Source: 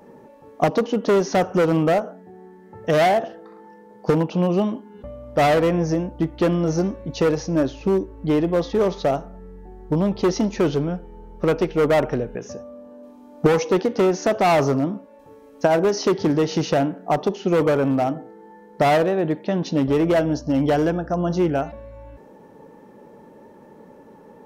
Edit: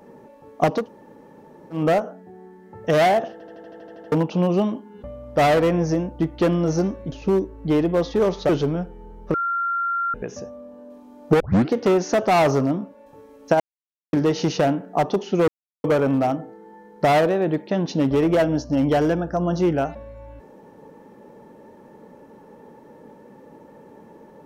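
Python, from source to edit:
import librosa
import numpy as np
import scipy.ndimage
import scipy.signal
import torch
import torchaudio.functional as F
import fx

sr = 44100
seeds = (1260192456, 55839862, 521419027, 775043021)

y = fx.edit(x, sr, fx.room_tone_fill(start_s=0.81, length_s=0.97, crossfade_s=0.16),
    fx.stutter_over(start_s=3.32, slice_s=0.08, count=10),
    fx.cut(start_s=7.12, length_s=0.59),
    fx.cut(start_s=9.08, length_s=1.54),
    fx.bleep(start_s=11.47, length_s=0.8, hz=1380.0, db=-20.5),
    fx.tape_start(start_s=13.53, length_s=0.32),
    fx.silence(start_s=15.73, length_s=0.53),
    fx.insert_silence(at_s=17.61, length_s=0.36), tone=tone)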